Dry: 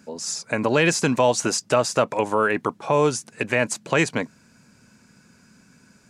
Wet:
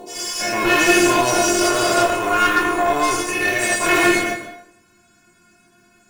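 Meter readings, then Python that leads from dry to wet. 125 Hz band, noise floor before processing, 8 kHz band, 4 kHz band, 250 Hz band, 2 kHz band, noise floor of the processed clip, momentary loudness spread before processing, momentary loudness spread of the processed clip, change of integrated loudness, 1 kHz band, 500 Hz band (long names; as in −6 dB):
−5.0 dB, −57 dBFS, +6.0 dB, +7.5 dB, +5.0 dB, +8.0 dB, −56 dBFS, 9 LU, 7 LU, +5.5 dB, +7.0 dB, +1.5 dB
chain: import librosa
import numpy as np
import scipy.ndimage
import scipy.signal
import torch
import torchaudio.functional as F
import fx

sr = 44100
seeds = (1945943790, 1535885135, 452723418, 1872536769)

p1 = fx.spec_dilate(x, sr, span_ms=240)
p2 = fx.sample_hold(p1, sr, seeds[0], rate_hz=8200.0, jitter_pct=0)
p3 = p1 + (p2 * librosa.db_to_amplitude(-7.5))
p4 = fx.stiff_resonator(p3, sr, f0_hz=350.0, decay_s=0.2, stiffness=0.002)
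p5 = fx.cheby_harmonics(p4, sr, harmonics=(6,), levels_db=(-19,), full_scale_db=-12.0)
p6 = p5 + fx.room_early_taps(p5, sr, ms=(10, 23), db=(-9.0, -6.5), dry=0)
p7 = fx.rev_plate(p6, sr, seeds[1], rt60_s=0.74, hf_ratio=0.75, predelay_ms=110, drr_db=9.0)
y = p7 * librosa.db_to_amplitude(7.5)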